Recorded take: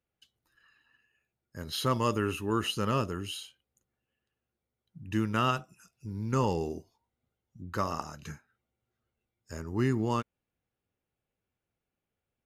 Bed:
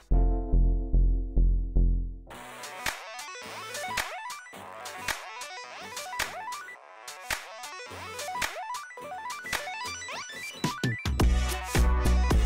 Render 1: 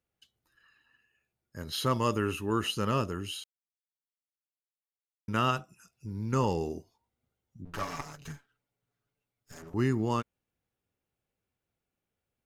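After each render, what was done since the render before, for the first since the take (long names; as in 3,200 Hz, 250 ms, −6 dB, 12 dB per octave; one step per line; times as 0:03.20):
0:03.44–0:05.28: silence
0:07.65–0:09.74: lower of the sound and its delayed copy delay 7 ms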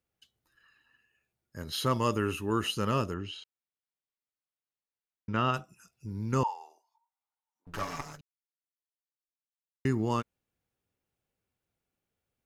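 0:03.14–0:05.54: high-frequency loss of the air 160 metres
0:06.43–0:07.67: four-pole ladder high-pass 860 Hz, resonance 80%
0:08.21–0:09.85: silence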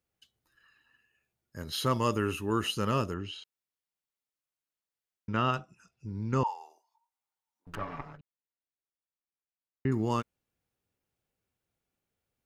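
0:05.54–0:06.46: high-frequency loss of the air 91 metres
0:07.75–0:09.92: high-frequency loss of the air 480 metres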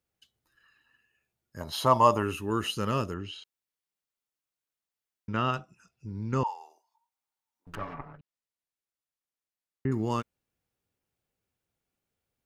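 0:01.60–0:02.23: flat-topped bell 800 Hz +13.5 dB 1.1 octaves
0:07.92–0:09.91: treble cut that deepens with the level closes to 1,900 Hz, closed at −40.5 dBFS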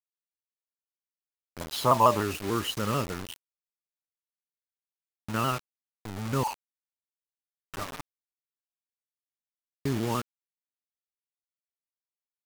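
bit reduction 6 bits
pitch modulation by a square or saw wave saw down 6.8 Hz, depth 100 cents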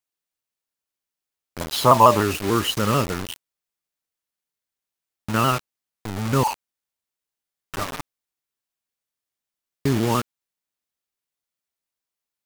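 level +8 dB
brickwall limiter −1 dBFS, peak gain reduction 1.5 dB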